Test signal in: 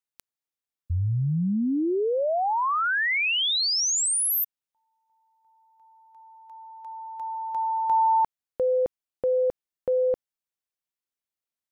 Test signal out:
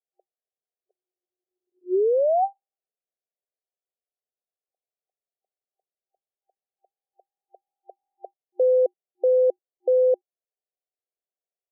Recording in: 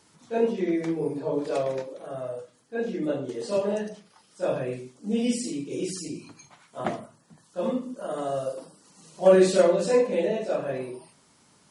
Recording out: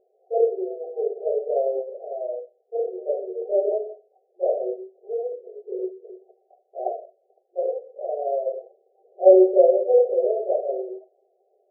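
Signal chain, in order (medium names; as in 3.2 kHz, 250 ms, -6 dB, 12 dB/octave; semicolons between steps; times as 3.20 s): FFT band-pass 360–790 Hz; trim +4.5 dB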